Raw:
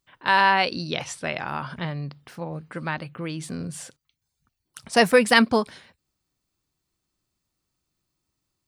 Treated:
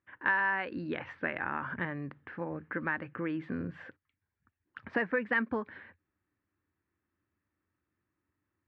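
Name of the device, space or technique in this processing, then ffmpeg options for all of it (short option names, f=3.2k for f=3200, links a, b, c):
bass amplifier: -af "acompressor=threshold=-29dB:ratio=4,highpass=86,equalizer=f=88:t=q:w=4:g=7,equalizer=f=150:t=q:w=4:g=-9,equalizer=f=300:t=q:w=4:g=5,equalizer=f=690:t=q:w=4:g=-6,equalizer=f=1.7k:t=q:w=4:g=9,lowpass=f=2.2k:w=0.5412,lowpass=f=2.2k:w=1.3066,volume=-1.5dB"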